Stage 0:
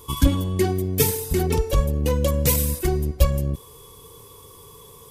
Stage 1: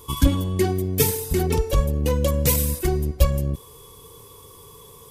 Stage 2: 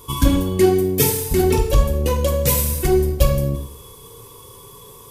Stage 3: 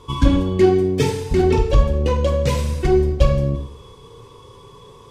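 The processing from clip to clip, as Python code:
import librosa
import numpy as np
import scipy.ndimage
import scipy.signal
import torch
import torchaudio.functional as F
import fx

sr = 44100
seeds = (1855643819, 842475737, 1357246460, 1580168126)

y1 = x
y2 = fx.rider(y1, sr, range_db=10, speed_s=0.5)
y2 = fx.rev_plate(y2, sr, seeds[0], rt60_s=0.66, hf_ratio=1.0, predelay_ms=0, drr_db=3.0)
y2 = F.gain(torch.from_numpy(y2), 2.5).numpy()
y3 = fx.air_absorb(y2, sr, metres=130.0)
y3 = F.gain(torch.from_numpy(y3), 1.0).numpy()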